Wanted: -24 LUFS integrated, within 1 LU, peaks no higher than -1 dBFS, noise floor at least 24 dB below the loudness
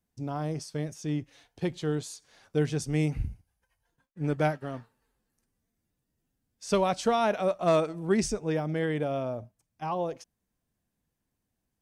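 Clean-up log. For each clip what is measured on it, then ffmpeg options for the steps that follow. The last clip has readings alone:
loudness -30.0 LUFS; peak -13.5 dBFS; loudness target -24.0 LUFS
-> -af "volume=6dB"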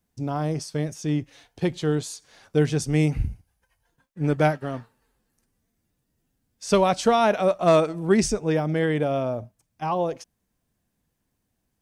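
loudness -24.0 LUFS; peak -7.5 dBFS; noise floor -77 dBFS

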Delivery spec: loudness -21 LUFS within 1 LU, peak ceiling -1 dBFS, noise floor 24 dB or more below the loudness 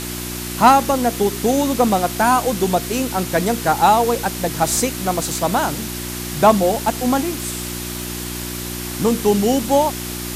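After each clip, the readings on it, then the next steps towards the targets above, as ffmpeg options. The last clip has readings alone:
hum 60 Hz; harmonics up to 360 Hz; hum level -27 dBFS; noise floor -28 dBFS; noise floor target -43 dBFS; loudness -18.5 LUFS; peak -1.5 dBFS; loudness target -21.0 LUFS
-> -af "bandreject=f=60:t=h:w=4,bandreject=f=120:t=h:w=4,bandreject=f=180:t=h:w=4,bandreject=f=240:t=h:w=4,bandreject=f=300:t=h:w=4,bandreject=f=360:t=h:w=4"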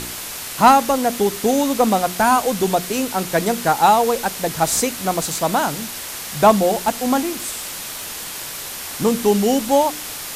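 hum none; noise floor -31 dBFS; noise floor target -43 dBFS
-> -af "afftdn=nr=12:nf=-31"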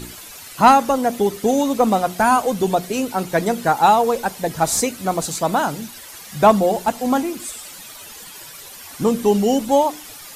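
noise floor -38 dBFS; noise floor target -43 dBFS
-> -af "afftdn=nr=6:nf=-38"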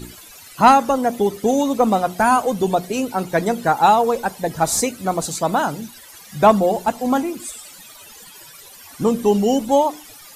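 noise floor -42 dBFS; noise floor target -43 dBFS
-> -af "afftdn=nr=6:nf=-42"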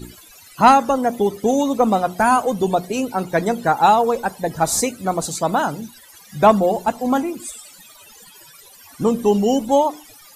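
noise floor -46 dBFS; loudness -18.5 LUFS; peak -2.0 dBFS; loudness target -21.0 LUFS
-> -af "volume=-2.5dB"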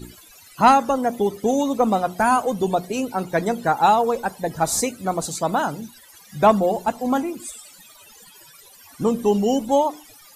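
loudness -21.0 LUFS; peak -4.5 dBFS; noise floor -48 dBFS

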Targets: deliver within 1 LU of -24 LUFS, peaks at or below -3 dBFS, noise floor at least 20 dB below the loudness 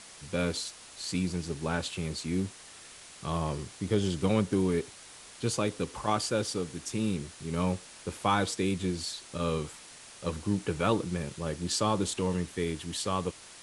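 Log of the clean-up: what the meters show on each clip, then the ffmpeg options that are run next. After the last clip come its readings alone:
noise floor -50 dBFS; noise floor target -52 dBFS; loudness -31.5 LUFS; peak -12.5 dBFS; loudness target -24.0 LUFS
-> -af "afftdn=nr=6:nf=-50"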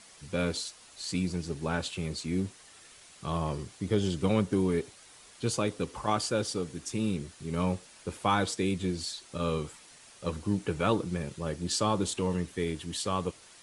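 noise floor -55 dBFS; loudness -32.0 LUFS; peak -12.5 dBFS; loudness target -24.0 LUFS
-> -af "volume=8dB"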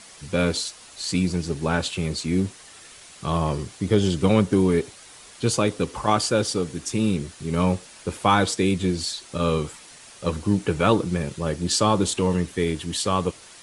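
loudness -24.0 LUFS; peak -4.5 dBFS; noise floor -47 dBFS

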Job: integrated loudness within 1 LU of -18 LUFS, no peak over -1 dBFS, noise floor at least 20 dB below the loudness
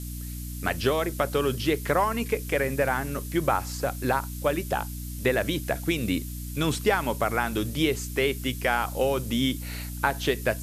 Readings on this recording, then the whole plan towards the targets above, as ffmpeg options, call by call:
hum 60 Hz; harmonics up to 300 Hz; hum level -33 dBFS; noise floor -35 dBFS; noise floor target -47 dBFS; loudness -27.0 LUFS; peak -8.0 dBFS; loudness target -18.0 LUFS
-> -af "bandreject=f=60:t=h:w=4,bandreject=f=120:t=h:w=4,bandreject=f=180:t=h:w=4,bandreject=f=240:t=h:w=4,bandreject=f=300:t=h:w=4"
-af "afftdn=nr=12:nf=-35"
-af "volume=9dB,alimiter=limit=-1dB:level=0:latency=1"

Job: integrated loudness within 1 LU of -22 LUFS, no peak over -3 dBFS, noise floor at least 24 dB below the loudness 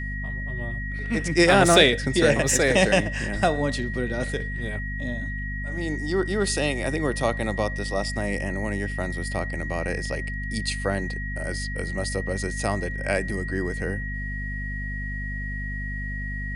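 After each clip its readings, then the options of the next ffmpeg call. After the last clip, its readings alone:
hum 50 Hz; harmonics up to 250 Hz; hum level -29 dBFS; steady tone 1900 Hz; tone level -33 dBFS; loudness -25.0 LUFS; peak -2.5 dBFS; loudness target -22.0 LUFS
-> -af "bandreject=f=50:t=h:w=6,bandreject=f=100:t=h:w=6,bandreject=f=150:t=h:w=6,bandreject=f=200:t=h:w=6,bandreject=f=250:t=h:w=6"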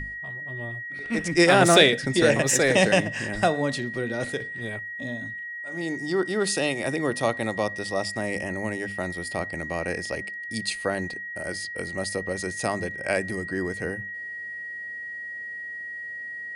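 hum none; steady tone 1900 Hz; tone level -33 dBFS
-> -af "bandreject=f=1.9k:w=30"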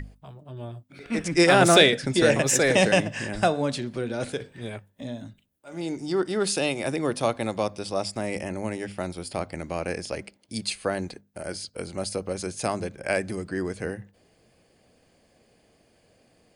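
steady tone none; loudness -25.0 LUFS; peak -3.0 dBFS; loudness target -22.0 LUFS
-> -af "volume=3dB,alimiter=limit=-3dB:level=0:latency=1"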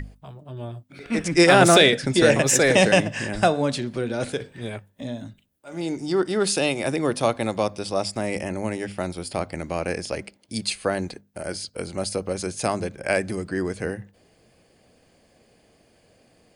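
loudness -22.5 LUFS; peak -3.0 dBFS; noise floor -61 dBFS

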